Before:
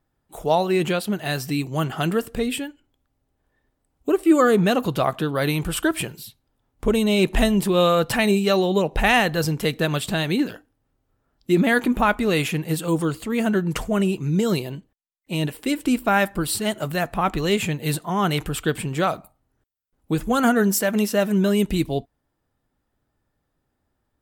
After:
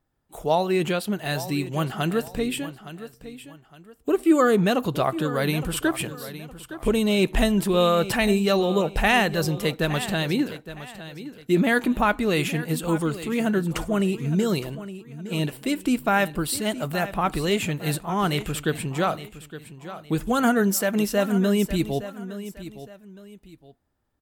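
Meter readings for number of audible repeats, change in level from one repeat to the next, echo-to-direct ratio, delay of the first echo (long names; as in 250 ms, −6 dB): 2, −9.5 dB, −13.5 dB, 864 ms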